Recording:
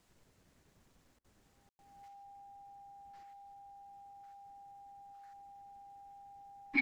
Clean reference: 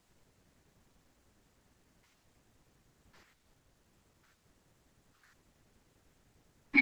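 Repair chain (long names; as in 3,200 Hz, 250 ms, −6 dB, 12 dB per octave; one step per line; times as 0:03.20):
notch filter 800 Hz, Q 30
ambience match 0:01.69–0:01.79
repair the gap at 0:01.19, 52 ms
level correction +5.5 dB, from 0:02.08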